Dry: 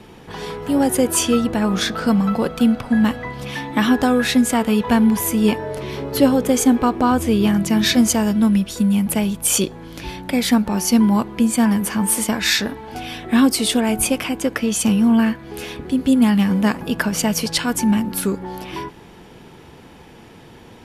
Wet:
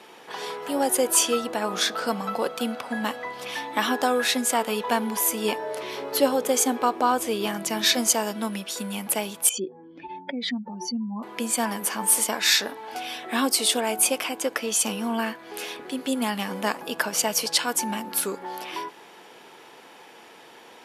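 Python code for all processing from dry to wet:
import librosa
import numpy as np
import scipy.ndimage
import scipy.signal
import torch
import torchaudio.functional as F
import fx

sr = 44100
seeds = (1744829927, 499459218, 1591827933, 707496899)

y = fx.chain(x, sr, fx.spec_expand(power=2.3),
    fx.lowpass(hz=3200.0, slope=12), at=(9.49, 11.23))
y = scipy.signal.sosfilt(scipy.signal.butter(2, 530.0, 'highpass', fs=sr, output='sos'), y)
y = fx.dynamic_eq(y, sr, hz=1900.0, q=0.89, threshold_db=-36.0, ratio=4.0, max_db=-4)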